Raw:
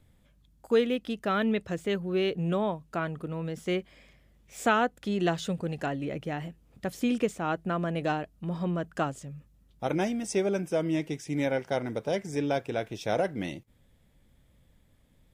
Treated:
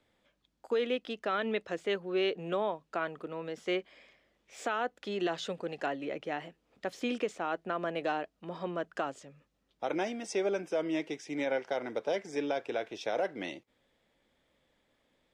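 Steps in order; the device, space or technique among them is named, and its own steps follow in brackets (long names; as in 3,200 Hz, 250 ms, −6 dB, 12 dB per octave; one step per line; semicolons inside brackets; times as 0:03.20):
DJ mixer with the lows and highs turned down (three-way crossover with the lows and the highs turned down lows −21 dB, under 290 Hz, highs −17 dB, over 6,400 Hz; brickwall limiter −22 dBFS, peak gain reduction 10 dB)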